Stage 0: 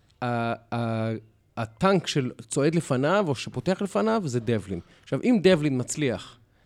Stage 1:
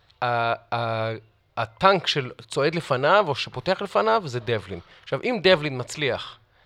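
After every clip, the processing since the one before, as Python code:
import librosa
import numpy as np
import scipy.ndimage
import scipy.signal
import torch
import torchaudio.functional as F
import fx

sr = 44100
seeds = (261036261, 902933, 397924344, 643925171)

y = fx.graphic_eq(x, sr, hz=(250, 500, 1000, 2000, 4000, 8000), db=(-11, 4, 8, 4, 10, -10))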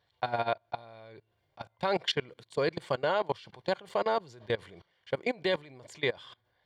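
y = fx.level_steps(x, sr, step_db=23)
y = fx.notch_comb(y, sr, f0_hz=1300.0)
y = F.gain(torch.from_numpy(y), -3.0).numpy()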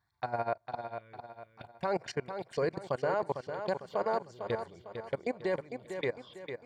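y = fx.env_phaser(x, sr, low_hz=510.0, high_hz=3400.0, full_db=-30.0)
y = fx.echo_feedback(y, sr, ms=452, feedback_pct=40, wet_db=-8.0)
y = F.gain(torch.from_numpy(y), -2.0).numpy()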